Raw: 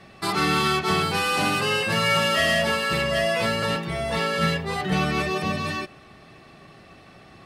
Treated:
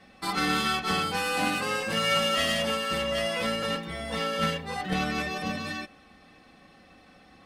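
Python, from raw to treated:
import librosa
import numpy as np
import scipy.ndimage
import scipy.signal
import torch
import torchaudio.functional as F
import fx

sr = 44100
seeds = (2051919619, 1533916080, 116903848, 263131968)

y = fx.cheby_harmonics(x, sr, harmonics=(3, 4), levels_db=(-17, -29), full_scale_db=-9.5)
y = y + 0.67 * np.pad(y, (int(3.9 * sr / 1000.0), 0))[:len(y)]
y = F.gain(torch.from_numpy(y), -2.5).numpy()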